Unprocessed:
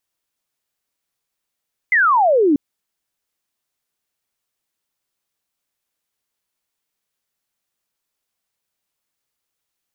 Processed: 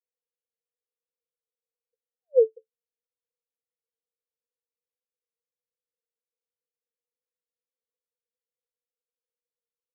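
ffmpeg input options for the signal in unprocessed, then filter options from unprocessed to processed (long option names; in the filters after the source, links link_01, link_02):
-f lavfi -i "aevalsrc='0.282*clip(t/0.002,0,1)*clip((0.64-t)/0.002,0,1)*sin(2*PI*2100*0.64/log(270/2100)*(exp(log(270/2100)*t/0.64)-1))':duration=0.64:sample_rate=44100"
-af "asuperpass=centerf=480:order=12:qfactor=5.8"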